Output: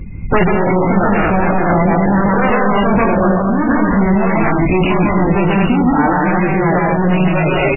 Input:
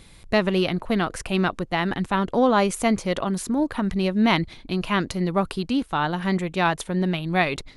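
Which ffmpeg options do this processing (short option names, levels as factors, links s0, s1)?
-filter_complex "[0:a]asettb=1/sr,asplit=3[s0][s1][s2];[s0]atrim=end=1.084[s3];[s1]atrim=start=1.08:end=3.24,asetpts=PTS-STARTPTS,afade=t=in:d=0.004:c=qsin,afade=t=out:st=2.156:d=0.004:c=qsin,lowpass=1300[s4];[s2]atrim=start=3.236[s5];[s3][s4]acrossfade=d=0.004:c1=hsin:c2=qsin[s6];[s6][s5]acrossfade=d=0.004:c1=qsin:c2=hsin,deesser=0.45,afftdn=nr=23:nf=-45,aeval=exprs='0.447*sin(PI/2*4.47*val(0)/0.447)':c=same,flanger=delay=19.5:depth=4.9:speed=0.94,asoftclip=type=hard:threshold=0.211,aecho=1:1:142.9|218.7:0.891|0.794,alimiter=level_in=5.96:limit=0.891:release=50:level=0:latency=1,volume=0.562" -ar 11025 -c:a libmp3lame -b:a 8k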